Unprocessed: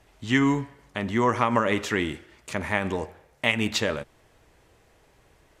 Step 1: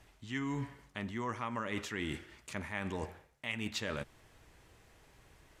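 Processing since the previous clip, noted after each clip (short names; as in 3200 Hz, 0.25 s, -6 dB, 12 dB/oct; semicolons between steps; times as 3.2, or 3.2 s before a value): bell 530 Hz -5 dB 1.5 oct; reverse; compressor 6:1, threshold -34 dBFS, peak gain reduction 15.5 dB; reverse; gain -1 dB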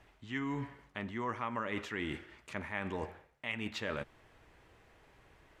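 tone controls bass -4 dB, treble -11 dB; gain +1.5 dB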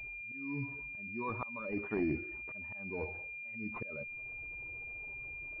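spectral contrast raised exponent 1.9; auto swell 0.559 s; pulse-width modulation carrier 2400 Hz; gain +6 dB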